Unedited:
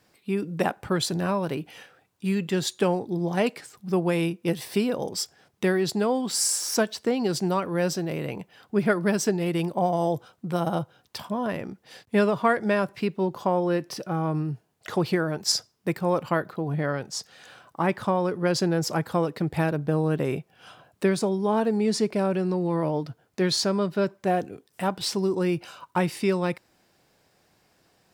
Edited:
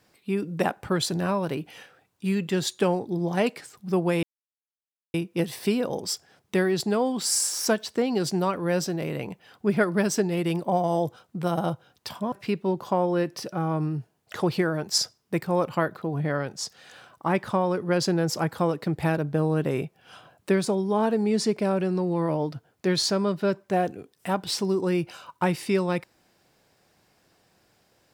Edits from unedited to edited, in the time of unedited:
0:04.23: splice in silence 0.91 s
0:11.41–0:12.86: remove

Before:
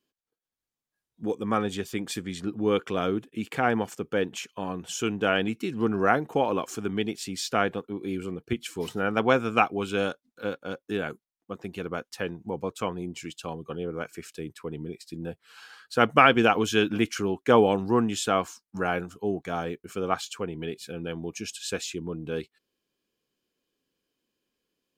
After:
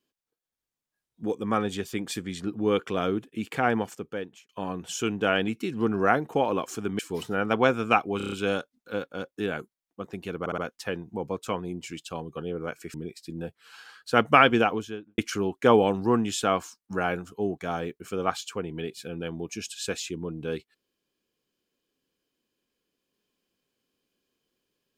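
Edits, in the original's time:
0:03.77–0:04.49: fade out linear
0:06.99–0:08.65: remove
0:09.83: stutter 0.03 s, 6 plays
0:11.91: stutter 0.06 s, 4 plays
0:14.27–0:14.78: remove
0:16.29–0:17.02: fade out and dull

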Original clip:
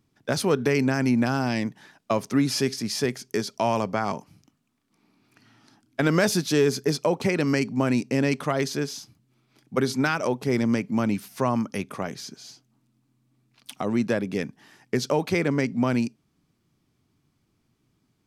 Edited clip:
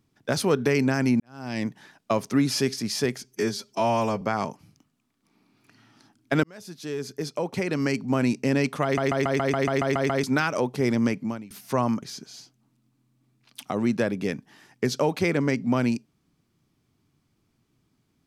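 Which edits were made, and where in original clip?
0:01.20–0:01.64: fade in quadratic
0:03.24–0:03.89: time-stretch 1.5×
0:06.11–0:07.93: fade in
0:08.51: stutter in place 0.14 s, 10 plays
0:10.88–0:11.18: fade out quadratic, to −21 dB
0:11.70–0:12.13: remove

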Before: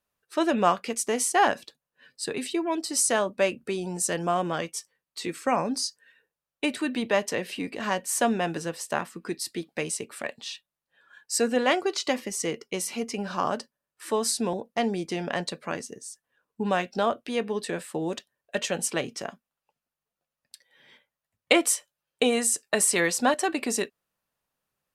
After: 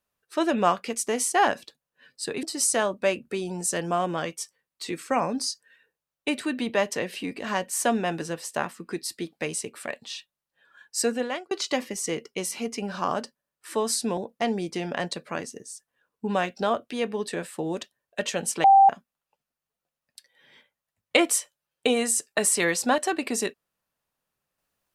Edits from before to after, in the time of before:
0:02.43–0:02.79: remove
0:11.40–0:11.87: fade out
0:19.00–0:19.25: beep over 784 Hz −11 dBFS

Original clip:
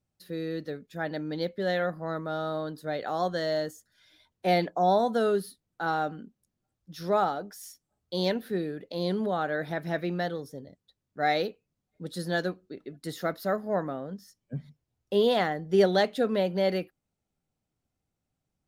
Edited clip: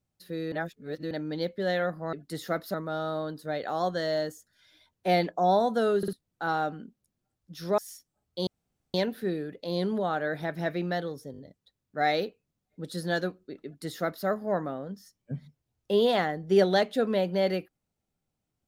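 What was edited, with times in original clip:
0:00.52–0:01.11: reverse
0:05.37: stutter in place 0.05 s, 3 plays
0:07.17–0:07.53: remove
0:08.22: splice in room tone 0.47 s
0:10.60: stutter 0.02 s, 4 plays
0:12.87–0:13.48: duplicate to 0:02.13

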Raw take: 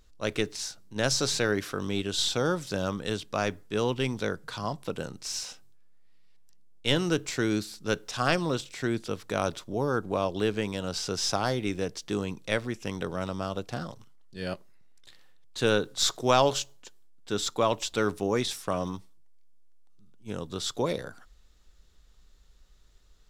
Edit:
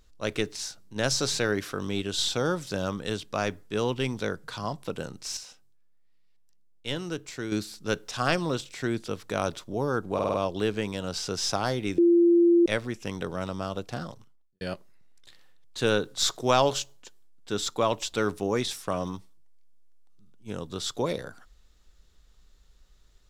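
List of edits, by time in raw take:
0:05.37–0:07.52: clip gain −7 dB
0:10.14: stutter 0.05 s, 5 plays
0:11.78–0:12.46: beep over 343 Hz −15.5 dBFS
0:13.89–0:14.41: fade out and dull

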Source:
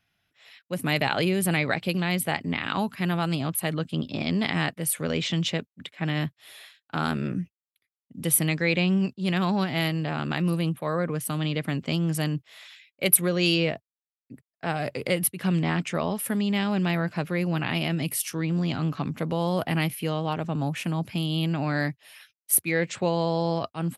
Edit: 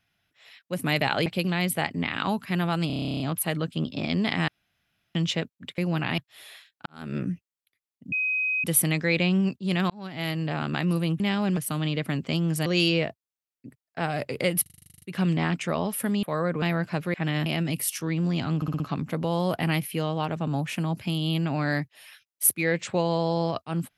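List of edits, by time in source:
0:01.26–0:01.76: remove
0:03.37: stutter 0.03 s, 12 plays
0:04.65–0:05.32: fill with room tone
0:05.95–0:06.27: swap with 0:17.38–0:17.78
0:06.95–0:07.26: fade in quadratic
0:08.21: insert tone 2,520 Hz −23 dBFS 0.52 s
0:09.47–0:10.04: fade in
0:10.77–0:11.16: swap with 0:16.49–0:16.86
0:12.25–0:13.32: remove
0:15.28: stutter 0.04 s, 11 plays
0:18.88: stutter 0.06 s, 5 plays

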